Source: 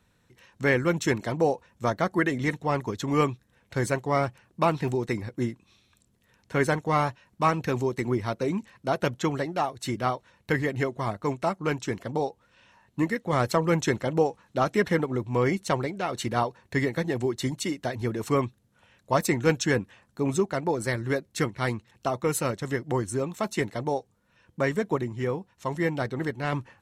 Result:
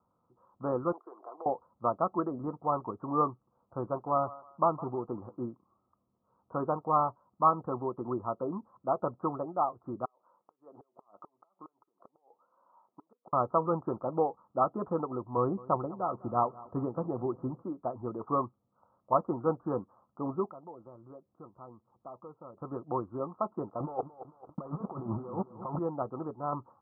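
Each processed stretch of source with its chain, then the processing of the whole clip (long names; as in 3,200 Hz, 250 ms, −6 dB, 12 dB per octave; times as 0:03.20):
0:00.92–0:01.46: high-pass filter 420 Hz 24 dB per octave + comb filter 2.7 ms, depth 37% + downward compressor 5 to 1, threshold −37 dBFS
0:03.31–0:05.48: high-frequency loss of the air 180 metres + feedback echo with a high-pass in the loop 159 ms, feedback 34%, high-pass 550 Hz, level −16.5 dB
0:10.05–0:13.33: high-pass filter 360 Hz + downward compressor 16 to 1, threshold −38 dBFS + gate with flip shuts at −32 dBFS, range −30 dB
0:15.37–0:17.62: low-shelf EQ 180 Hz +6.5 dB + repeating echo 203 ms, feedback 57%, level −21 dB
0:20.51–0:22.57: downward compressor 2 to 1, threshold −50 dBFS + low-pass filter 1,200 Hz
0:23.80–0:25.79: leveller curve on the samples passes 3 + compressor whose output falls as the input rises −26 dBFS, ratio −0.5 + feedback echo at a low word length 222 ms, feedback 55%, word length 8 bits, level −12.5 dB
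whole clip: Chebyshev low-pass filter 1,300 Hz, order 8; spectral tilt +4 dB per octave; notch filter 420 Hz, Q 12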